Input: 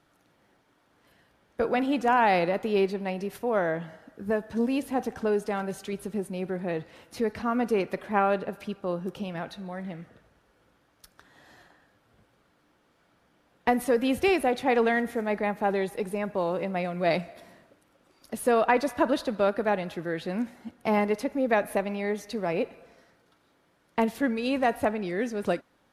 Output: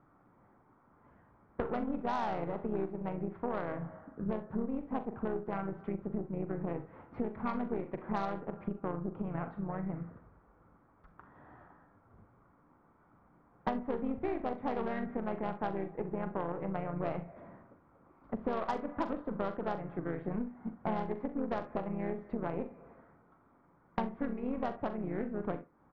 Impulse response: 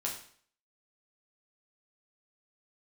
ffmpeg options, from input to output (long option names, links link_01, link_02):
-filter_complex "[0:a]lowpass=frequency=1500:width=0.5412,lowpass=frequency=1500:width=1.3066,aecho=1:1:0.9:0.36,asplit=2[link_01][link_02];[link_02]aecho=0:1:82:0.0944[link_03];[link_01][link_03]amix=inputs=2:normalize=0,asplit=2[link_04][link_05];[link_05]asetrate=37084,aresample=44100,atempo=1.18921,volume=-6dB[link_06];[link_04][link_06]amix=inputs=2:normalize=0,aeval=exprs='0.355*(cos(1*acos(clip(val(0)/0.355,-1,1)))-cos(1*PI/2))+0.0158*(cos(7*acos(clip(val(0)/0.355,-1,1)))-cos(7*PI/2))+0.02*(cos(8*acos(clip(val(0)/0.355,-1,1)))-cos(8*PI/2))':channel_layout=same,asplit=2[link_07][link_08];[link_08]aecho=0:1:41|65:0.282|0.133[link_09];[link_07][link_09]amix=inputs=2:normalize=0,acompressor=threshold=-36dB:ratio=5,volume=3.5dB"